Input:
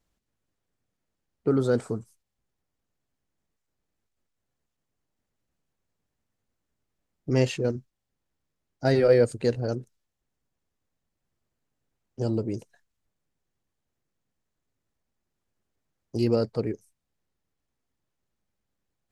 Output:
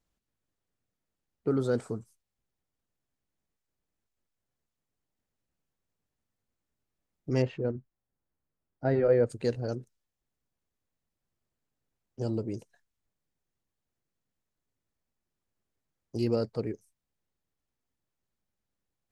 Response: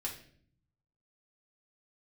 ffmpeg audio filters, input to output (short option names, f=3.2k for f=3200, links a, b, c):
-filter_complex "[0:a]asplit=3[a][b][c];[a]afade=t=out:st=7.41:d=0.02[d];[b]lowpass=1.7k,afade=t=in:st=7.41:d=0.02,afade=t=out:st=9.29:d=0.02[e];[c]afade=t=in:st=9.29:d=0.02[f];[d][e][f]amix=inputs=3:normalize=0,volume=-4.5dB"